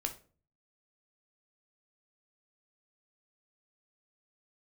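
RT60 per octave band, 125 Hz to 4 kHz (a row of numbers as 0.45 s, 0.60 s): 0.75 s, 0.55 s, 0.45 s, 0.35 s, 0.30 s, 0.25 s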